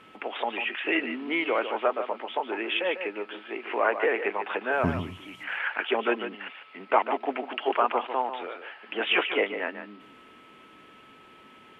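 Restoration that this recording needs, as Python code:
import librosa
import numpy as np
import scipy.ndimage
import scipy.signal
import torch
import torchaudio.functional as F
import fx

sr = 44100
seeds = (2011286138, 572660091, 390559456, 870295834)

y = fx.notch(x, sr, hz=1300.0, q=30.0)
y = fx.fix_echo_inverse(y, sr, delay_ms=147, level_db=-9.5)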